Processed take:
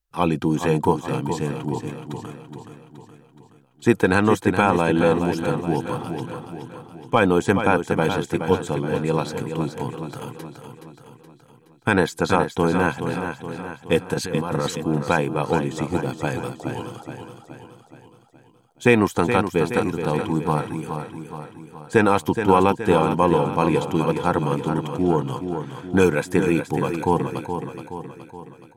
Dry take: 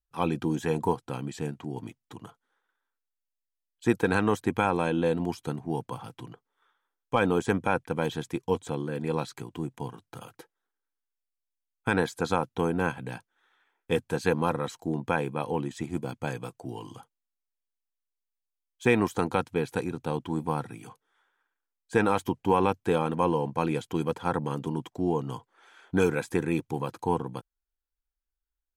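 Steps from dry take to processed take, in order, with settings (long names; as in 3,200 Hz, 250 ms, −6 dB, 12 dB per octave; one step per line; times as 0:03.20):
0:14.14–0:14.78: compressor whose output falls as the input rises −32 dBFS, ratio −1
on a send: repeating echo 422 ms, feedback 53%, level −8 dB
on the sum: level +7 dB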